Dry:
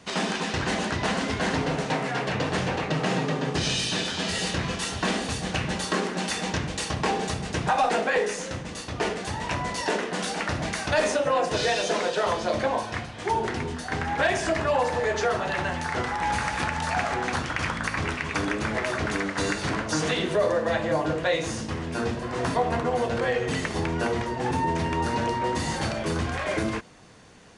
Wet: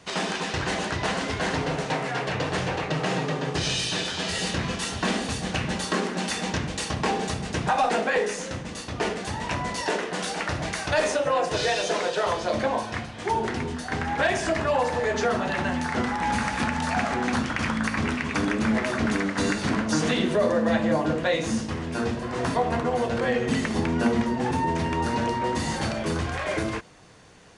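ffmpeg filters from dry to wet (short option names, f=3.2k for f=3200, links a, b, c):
-af "asetnsamples=n=441:p=0,asendcmd='4.39 equalizer g 3;9.83 equalizer g -5;12.51 equalizer g 4;15.13 equalizer g 13.5;21.58 equalizer g 3;23.23 equalizer g 12.5;24.44 equalizer g 3.5;26.17 equalizer g -4.5',equalizer=f=230:t=o:w=0.36:g=-7"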